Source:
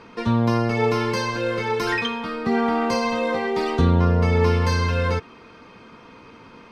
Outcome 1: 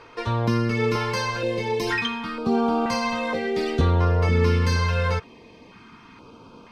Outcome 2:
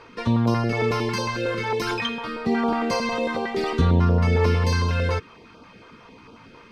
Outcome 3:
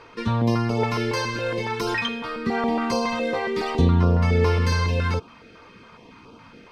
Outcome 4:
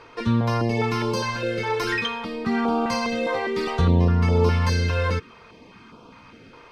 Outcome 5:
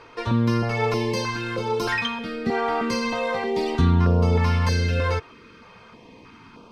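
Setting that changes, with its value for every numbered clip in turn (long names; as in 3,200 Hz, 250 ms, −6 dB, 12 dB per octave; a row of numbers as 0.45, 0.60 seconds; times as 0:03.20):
notch on a step sequencer, speed: 2.1, 11, 7.2, 4.9, 3.2 Hertz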